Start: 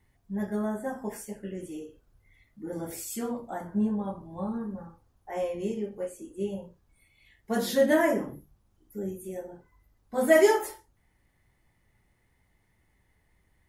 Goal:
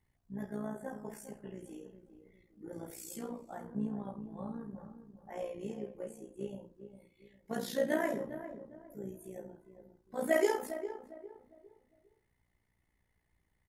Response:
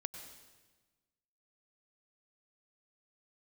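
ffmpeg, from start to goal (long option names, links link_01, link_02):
-filter_complex "[0:a]tremolo=f=59:d=0.667,asplit=2[link_01][link_02];[link_02]adelay=405,lowpass=frequency=960:poles=1,volume=-10dB,asplit=2[link_03][link_04];[link_04]adelay=405,lowpass=frequency=960:poles=1,volume=0.36,asplit=2[link_05][link_06];[link_06]adelay=405,lowpass=frequency=960:poles=1,volume=0.36,asplit=2[link_07][link_08];[link_08]adelay=405,lowpass=frequency=960:poles=1,volume=0.36[link_09];[link_01][link_03][link_05][link_07][link_09]amix=inputs=5:normalize=0,volume=-6.5dB"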